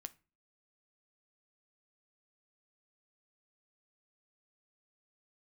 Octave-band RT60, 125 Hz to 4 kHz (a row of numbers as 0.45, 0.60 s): 0.45, 0.50, 0.35, 0.30, 0.30, 0.25 s